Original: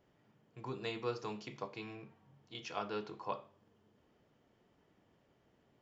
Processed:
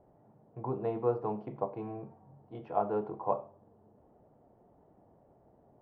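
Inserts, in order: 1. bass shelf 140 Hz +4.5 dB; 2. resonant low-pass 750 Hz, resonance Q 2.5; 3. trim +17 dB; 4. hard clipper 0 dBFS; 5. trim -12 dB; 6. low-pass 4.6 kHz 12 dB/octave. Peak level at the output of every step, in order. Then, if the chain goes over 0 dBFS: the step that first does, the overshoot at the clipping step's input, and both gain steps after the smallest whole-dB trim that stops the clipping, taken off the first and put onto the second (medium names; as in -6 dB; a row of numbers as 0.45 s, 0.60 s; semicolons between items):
-23.0 dBFS, -19.0 dBFS, -2.0 dBFS, -2.0 dBFS, -14.0 dBFS, -14.0 dBFS; nothing clips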